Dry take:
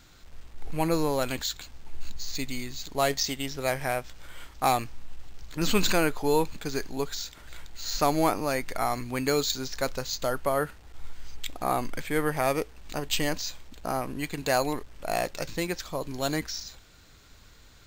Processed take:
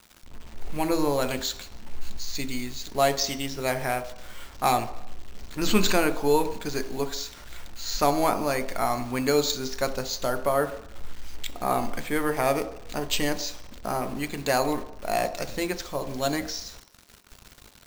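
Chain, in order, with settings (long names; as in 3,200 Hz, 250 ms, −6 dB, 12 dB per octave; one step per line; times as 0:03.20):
bit-depth reduction 8 bits, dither none
on a send: convolution reverb RT60 0.75 s, pre-delay 3 ms, DRR 9 dB
on the sum: level +1 dB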